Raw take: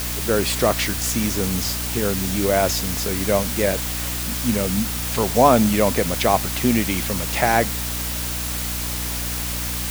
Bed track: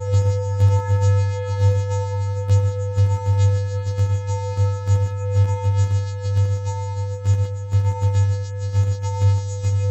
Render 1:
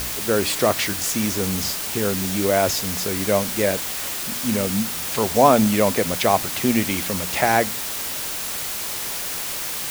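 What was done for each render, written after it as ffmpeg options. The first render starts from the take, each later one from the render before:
-af "bandreject=f=60:t=h:w=4,bandreject=f=120:t=h:w=4,bandreject=f=180:t=h:w=4,bandreject=f=240:t=h:w=4,bandreject=f=300:t=h:w=4"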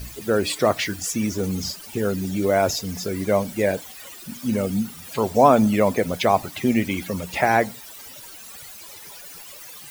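-af "afftdn=nr=17:nf=-28"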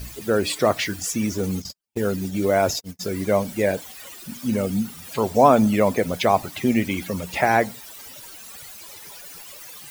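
-filter_complex "[0:a]asplit=3[a][b][c];[a]afade=t=out:st=1.43:d=0.02[d];[b]agate=range=-49dB:threshold=-28dB:ratio=16:release=100:detection=peak,afade=t=in:st=1.43:d=0.02,afade=t=out:st=2.99:d=0.02[e];[c]afade=t=in:st=2.99:d=0.02[f];[d][e][f]amix=inputs=3:normalize=0"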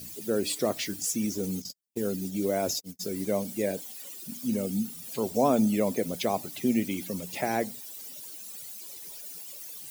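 -af "highpass=210,equalizer=f=1.3k:w=0.44:g=-15"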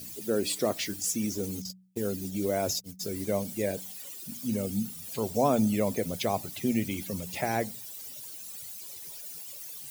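-af "bandreject=f=61.94:t=h:w=4,bandreject=f=123.88:t=h:w=4,bandreject=f=185.82:t=h:w=4,asubboost=boost=4.5:cutoff=110"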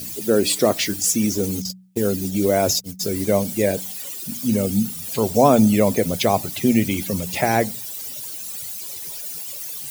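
-af "volume=10.5dB"

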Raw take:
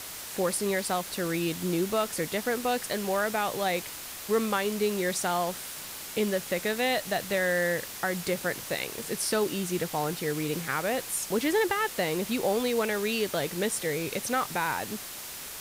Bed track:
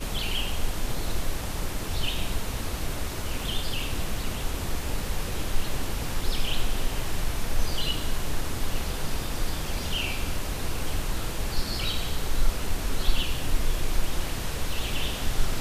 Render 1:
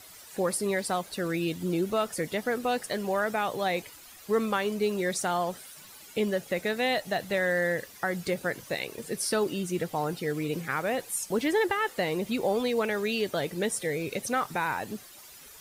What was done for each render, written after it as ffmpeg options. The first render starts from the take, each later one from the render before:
-af "afftdn=nr=13:nf=-40"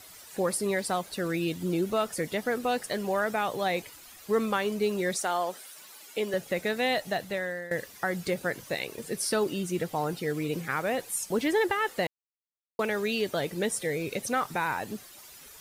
-filter_complex "[0:a]asettb=1/sr,asplit=3[a][b][c];[a]atrim=end=5.164[d];[b]atrim=start=5.16:end=6.34,asetpts=PTS-STARTPTS,afade=t=in:d=0.004:c=qsin,afade=t=out:st=1.176:d=0.004:c=qsin,highpass=330[e];[c]atrim=start=6.336[f];[d][e]acrossfade=d=0.004:c1=hsin:c2=qsin[g];[g][f]acrossfade=d=0.004:c1=qsin:c2=hsin,asplit=4[h][i][j][k];[h]atrim=end=7.71,asetpts=PTS-STARTPTS,afade=t=out:st=7.09:d=0.62:silence=0.149624[l];[i]atrim=start=7.71:end=12.07,asetpts=PTS-STARTPTS,afade=t=in:d=0.004:c=hsin:silence=0.149624,afade=t=out:st=4.356:d=0.004:c=hsin[m];[j]atrim=start=12.07:end=12.79,asetpts=PTS-STARTPTS,volume=0[n];[k]atrim=start=12.79,asetpts=PTS-STARTPTS,afade=t=in:d=0.004:c=hsin[o];[l][m][n][o]concat=n=4:v=0:a=1"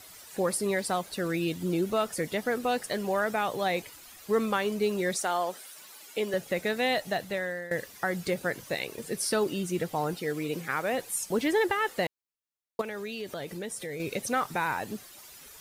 -filter_complex "[0:a]asettb=1/sr,asplit=3[a][b][c];[a]atrim=end=10.144[d];[b]atrim=start=10.14:end=10.93,asetpts=PTS-STARTPTS,afade=t=in:d=0.004:c=qsin,afade=t=out:st=0.786:d=0.004:c=qsin,lowshelf=f=120:g=-10[e];[c]atrim=start=10.926[f];[d][e]acrossfade=d=0.004:c1=hsin:c2=qsin[g];[g][f]acrossfade=d=0.004:c1=qsin:c2=hsin,asettb=1/sr,asplit=3[h][i][j];[h]atrim=end=12.814[k];[i]atrim=start=12.81:end=14,asetpts=PTS-STARTPTS,afade=t=in:d=0.004:c=qsin,afade=t=out:st=1.186:d=0.004:c=qsin,acompressor=threshold=-35dB:ratio=3:attack=3.2:release=140:knee=1:detection=peak[l];[j]atrim=start=13.996[m];[k][l]acrossfade=d=0.004:c1=hsin:c2=qsin[n];[n][m]acrossfade=d=0.004:c1=qsin:c2=hsin"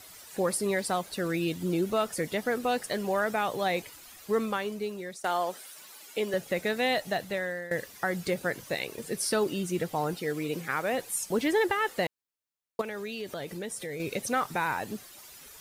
-filter_complex "[0:a]asplit=2[a][b];[a]atrim=end=5.24,asetpts=PTS-STARTPTS,afade=t=out:st=4.18:d=1.06:silence=0.16788[c];[b]atrim=start=5.24,asetpts=PTS-STARTPTS,afade=t=in:d=0.004:c=hsin:silence=0.16788[d];[c][d]concat=n=2:v=0:a=1"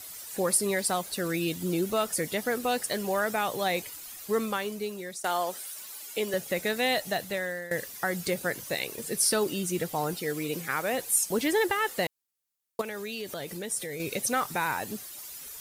-af "aemphasis=mode=production:type=cd"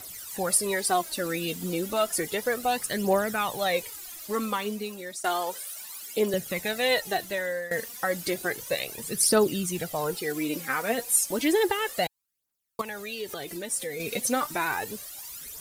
-af "aphaser=in_gain=1:out_gain=1:delay=4.5:decay=0.57:speed=0.32:type=triangular"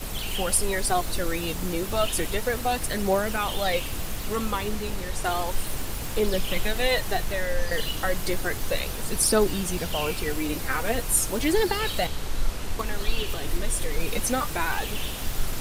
-filter_complex "[1:a]volume=-2.5dB[a];[0:a][a]amix=inputs=2:normalize=0"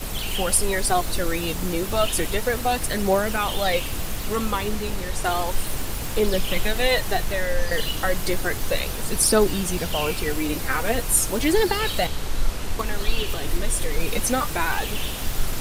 -af "volume=3dB"

